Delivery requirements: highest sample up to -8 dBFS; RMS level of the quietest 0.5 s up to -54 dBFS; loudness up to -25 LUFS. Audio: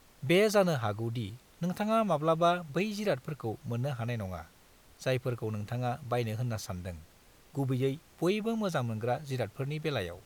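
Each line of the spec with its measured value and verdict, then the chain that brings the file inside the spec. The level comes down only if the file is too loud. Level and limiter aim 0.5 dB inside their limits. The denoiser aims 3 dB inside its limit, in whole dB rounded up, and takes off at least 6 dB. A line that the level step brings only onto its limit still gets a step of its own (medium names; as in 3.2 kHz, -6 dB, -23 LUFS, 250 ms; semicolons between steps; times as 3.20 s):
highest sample -14.5 dBFS: pass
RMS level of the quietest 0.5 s -59 dBFS: pass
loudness -32.0 LUFS: pass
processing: none needed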